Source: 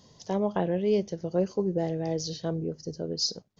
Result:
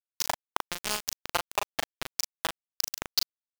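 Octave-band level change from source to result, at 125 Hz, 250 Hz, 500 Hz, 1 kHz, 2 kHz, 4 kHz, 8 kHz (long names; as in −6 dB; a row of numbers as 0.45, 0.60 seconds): −19.5 dB, −19.5 dB, −13.5 dB, +4.0 dB, +11.0 dB, +3.0 dB, can't be measured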